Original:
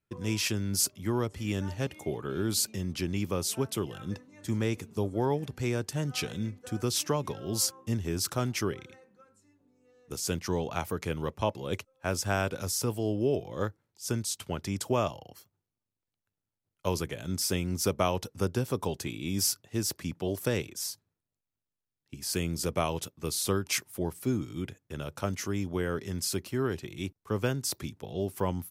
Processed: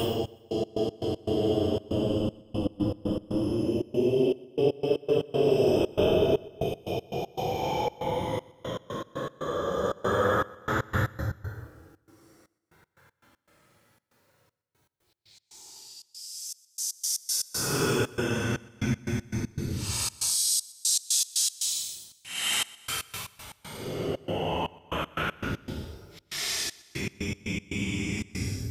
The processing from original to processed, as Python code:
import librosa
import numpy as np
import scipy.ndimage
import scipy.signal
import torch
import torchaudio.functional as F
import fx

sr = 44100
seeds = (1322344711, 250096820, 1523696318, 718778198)

p1 = fx.low_shelf(x, sr, hz=380.0, db=-11.0)
p2 = fx.transient(p1, sr, attack_db=-1, sustain_db=12)
p3 = fx.paulstretch(p2, sr, seeds[0], factor=16.0, window_s=0.05, from_s=12.99)
p4 = fx.step_gate(p3, sr, bpm=118, pattern='xx..x.x.x.xxxx.x', floor_db=-60.0, edge_ms=4.5)
p5 = p4 + fx.echo_feedback(p4, sr, ms=123, feedback_pct=56, wet_db=-22.5, dry=0)
y = p5 * librosa.db_to_amplitude(8.0)